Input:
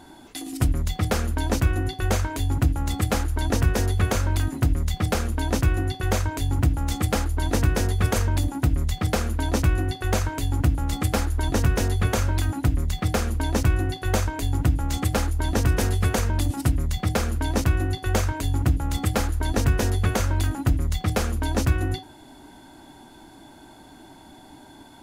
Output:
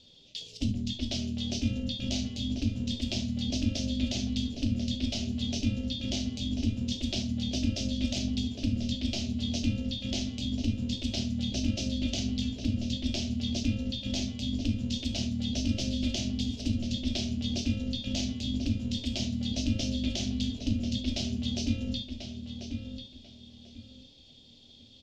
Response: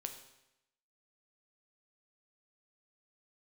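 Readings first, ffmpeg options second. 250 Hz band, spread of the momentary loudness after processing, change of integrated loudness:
-1.0 dB, 4 LU, -7.5 dB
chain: -filter_complex "[0:a]firequalizer=gain_entry='entry(130,0);entry(280,-18);entry(440,-1);entry(860,-29);entry(1600,-22);entry(2900,10);entry(5400,9);entry(9900,-24)':delay=0.05:min_phase=1,aeval=exprs='val(0)*sin(2*PI*160*n/s)':c=same,asplit=2[a][b];[b]adelay=1041,lowpass=f=3.9k:p=1,volume=-7dB,asplit=2[c][d];[d]adelay=1041,lowpass=f=3.9k:p=1,volume=0.26,asplit=2[e][f];[f]adelay=1041,lowpass=f=3.9k:p=1,volume=0.26[g];[a][c][e][g]amix=inputs=4:normalize=0[h];[1:a]atrim=start_sample=2205,atrim=end_sample=3528[i];[h][i]afir=irnorm=-1:irlink=0,volume=-3dB"

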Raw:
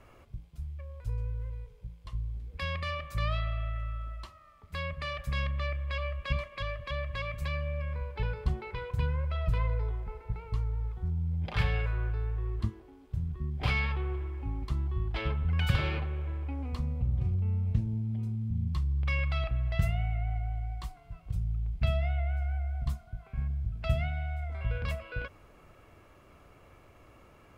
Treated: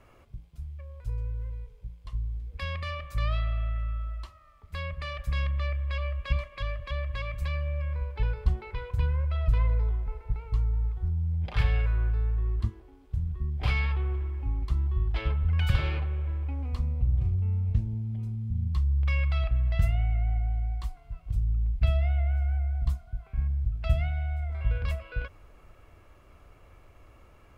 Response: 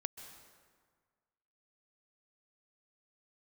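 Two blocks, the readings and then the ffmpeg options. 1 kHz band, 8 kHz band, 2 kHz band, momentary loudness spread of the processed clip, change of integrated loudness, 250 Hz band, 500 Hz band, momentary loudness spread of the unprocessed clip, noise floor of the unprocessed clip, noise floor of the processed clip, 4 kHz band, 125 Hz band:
-1.0 dB, n/a, -1.0 dB, 11 LU, +3.5 dB, -2.5 dB, -1.5 dB, 10 LU, -57 dBFS, -55 dBFS, -1.0 dB, +3.5 dB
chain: -af "asubboost=boost=2.5:cutoff=90,volume=-1dB"

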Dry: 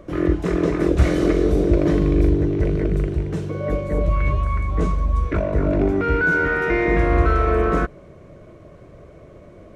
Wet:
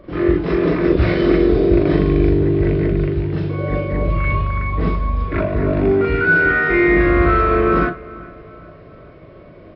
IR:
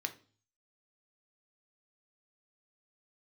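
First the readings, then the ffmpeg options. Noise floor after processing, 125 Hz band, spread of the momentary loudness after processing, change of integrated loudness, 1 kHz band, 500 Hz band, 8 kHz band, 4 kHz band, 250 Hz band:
-41 dBFS, +2.0 dB, 8 LU, +3.5 dB, +4.0 dB, +4.0 dB, n/a, +4.5 dB, +4.0 dB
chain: -filter_complex "[0:a]asplit=2[a][b];[b]adelay=407,lowpass=f=3.2k:p=1,volume=-20dB,asplit=2[c][d];[d]adelay=407,lowpass=f=3.2k:p=1,volume=0.49,asplit=2[e][f];[f]adelay=407,lowpass=f=3.2k:p=1,volume=0.49,asplit=2[g][h];[h]adelay=407,lowpass=f=3.2k:p=1,volume=0.49[i];[a][c][e][g][i]amix=inputs=5:normalize=0,asplit=2[j][k];[1:a]atrim=start_sample=2205,atrim=end_sample=3087,adelay=38[l];[k][l]afir=irnorm=-1:irlink=0,volume=3.5dB[m];[j][m]amix=inputs=2:normalize=0,aresample=11025,aresample=44100,volume=-1dB"

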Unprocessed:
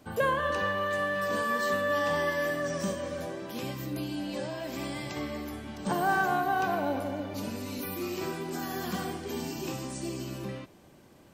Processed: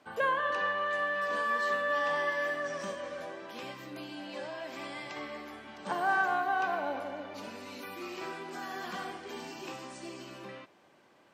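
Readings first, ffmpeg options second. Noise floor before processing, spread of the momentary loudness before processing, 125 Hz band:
-56 dBFS, 10 LU, -15.5 dB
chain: -af "bandpass=f=1.5k:t=q:w=0.57:csg=0"

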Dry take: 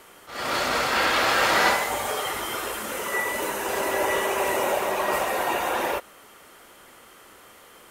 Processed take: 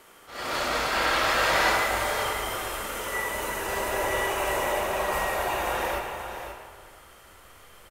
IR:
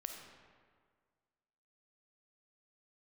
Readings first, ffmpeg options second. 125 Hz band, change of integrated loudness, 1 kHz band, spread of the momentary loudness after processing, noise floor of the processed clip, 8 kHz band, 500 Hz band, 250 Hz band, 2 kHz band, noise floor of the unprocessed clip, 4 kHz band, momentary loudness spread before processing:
+3.0 dB, -2.5 dB, -2.0 dB, 13 LU, -52 dBFS, -2.5 dB, -2.5 dB, -4.0 dB, -2.0 dB, -50 dBFS, -2.0 dB, 9 LU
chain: -filter_complex "[0:a]asubboost=boost=7:cutoff=93,aecho=1:1:533:0.355[a];[1:a]atrim=start_sample=2205[b];[a][b]afir=irnorm=-1:irlink=0"

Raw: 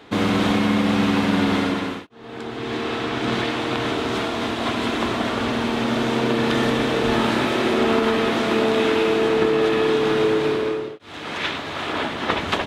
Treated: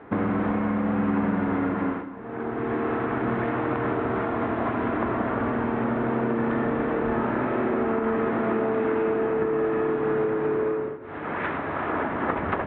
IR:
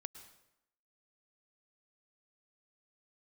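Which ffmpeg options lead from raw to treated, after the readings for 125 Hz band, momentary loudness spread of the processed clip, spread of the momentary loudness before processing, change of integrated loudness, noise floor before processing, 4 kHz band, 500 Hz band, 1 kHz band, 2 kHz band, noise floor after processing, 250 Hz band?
-3.5 dB, 4 LU, 8 LU, -5.0 dB, -35 dBFS, under -20 dB, -4.0 dB, -3.0 dB, -7.0 dB, -34 dBFS, -4.0 dB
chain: -filter_complex "[0:a]lowpass=f=1.8k:w=0.5412,lowpass=f=1.8k:w=1.3066,acompressor=threshold=-24dB:ratio=4,asplit=2[a][b];[1:a]atrim=start_sample=2205,asetrate=32634,aresample=44100,lowpass=5.3k[c];[b][c]afir=irnorm=-1:irlink=0,volume=9dB[d];[a][d]amix=inputs=2:normalize=0,volume=-8dB"

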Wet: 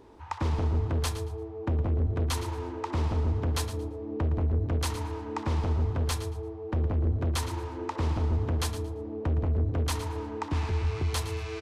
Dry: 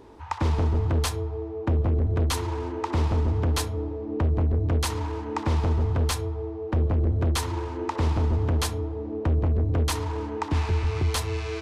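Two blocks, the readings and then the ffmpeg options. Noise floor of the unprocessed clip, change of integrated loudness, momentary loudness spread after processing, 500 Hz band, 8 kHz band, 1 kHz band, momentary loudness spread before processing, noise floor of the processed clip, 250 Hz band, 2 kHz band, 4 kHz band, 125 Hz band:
-35 dBFS, -4.0 dB, 7 LU, -4.5 dB, -4.0 dB, -4.5 dB, 7 LU, -39 dBFS, -4.0 dB, -4.0 dB, -4.0 dB, -4.0 dB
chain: -af "aecho=1:1:114|228|342:0.251|0.0553|0.0122,volume=-4.5dB"

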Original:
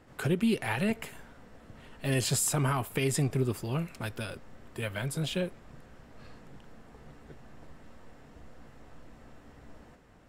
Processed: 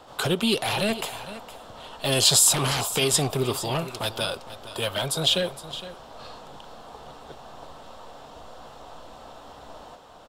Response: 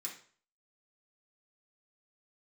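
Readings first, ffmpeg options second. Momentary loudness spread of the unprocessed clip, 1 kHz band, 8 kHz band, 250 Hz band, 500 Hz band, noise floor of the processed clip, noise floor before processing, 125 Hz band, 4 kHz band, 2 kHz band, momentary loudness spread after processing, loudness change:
12 LU, +8.0 dB, +12.0 dB, +1.5 dB, +7.0 dB, -46 dBFS, -55 dBFS, +0.5 dB, +16.5 dB, +5.5 dB, 24 LU, +8.0 dB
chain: -filter_complex "[0:a]highshelf=f=2.6k:t=q:w=3:g=10.5,acrossover=split=670|1300[a][b][c];[b]aeval=exprs='0.0531*sin(PI/2*7.94*val(0)/0.0531)':c=same[d];[a][d][c]amix=inputs=3:normalize=0,aecho=1:1:463:0.188"

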